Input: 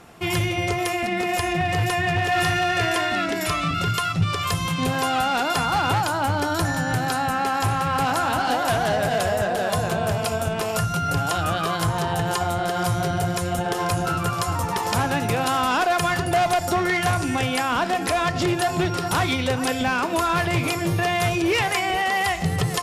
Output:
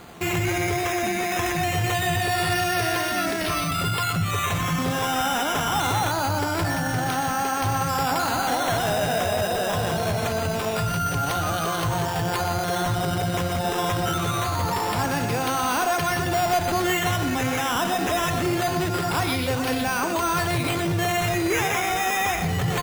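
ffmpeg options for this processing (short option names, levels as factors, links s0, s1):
-filter_complex "[0:a]acrusher=samples=8:mix=1:aa=0.000001:lfo=1:lforange=4.8:lforate=0.24,alimiter=limit=0.0794:level=0:latency=1:release=13,asplit=2[s0][s1];[s1]adelay=122.4,volume=0.398,highshelf=f=4000:g=-2.76[s2];[s0][s2]amix=inputs=2:normalize=0,volume=1.5"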